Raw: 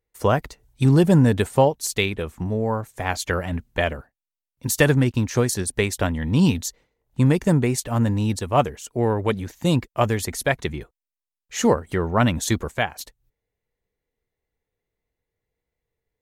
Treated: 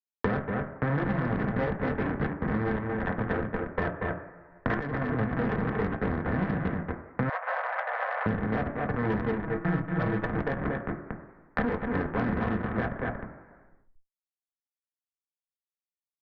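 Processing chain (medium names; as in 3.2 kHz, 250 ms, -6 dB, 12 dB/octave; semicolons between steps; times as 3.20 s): backward echo that repeats 324 ms, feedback 53%, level -11 dB; Schmitt trigger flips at -19.5 dBFS; steep low-pass 1.9 kHz 48 dB/octave; delay 233 ms -5 dB; reverberation RT60 0.75 s, pre-delay 3 ms, DRR 1.5 dB; Chebyshev shaper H 6 -21 dB, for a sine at -13.5 dBFS; 4.74–5.19 s: compressor with a negative ratio -33 dBFS, ratio -1; 7.29–8.26 s: steep high-pass 550 Hz 72 dB/octave; 9.43–10.27 s: comb 6.2 ms, depth 73%; three bands compressed up and down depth 100%; trim -1.5 dB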